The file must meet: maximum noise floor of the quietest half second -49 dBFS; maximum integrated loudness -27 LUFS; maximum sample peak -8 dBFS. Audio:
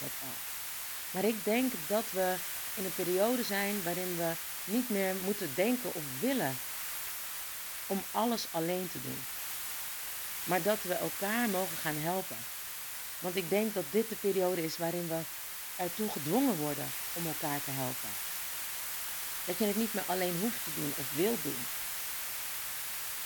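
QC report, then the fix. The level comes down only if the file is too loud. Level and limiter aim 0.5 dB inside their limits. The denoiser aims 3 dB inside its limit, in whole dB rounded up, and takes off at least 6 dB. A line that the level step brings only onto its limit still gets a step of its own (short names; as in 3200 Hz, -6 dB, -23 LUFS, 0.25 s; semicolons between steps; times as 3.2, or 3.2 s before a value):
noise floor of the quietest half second -42 dBFS: fail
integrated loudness -33.5 LUFS: OK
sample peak -15.0 dBFS: OK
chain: denoiser 10 dB, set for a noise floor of -42 dBFS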